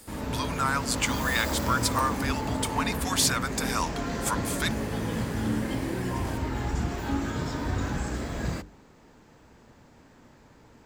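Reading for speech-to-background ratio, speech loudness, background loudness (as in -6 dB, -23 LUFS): 2.0 dB, -29.0 LUFS, -31.0 LUFS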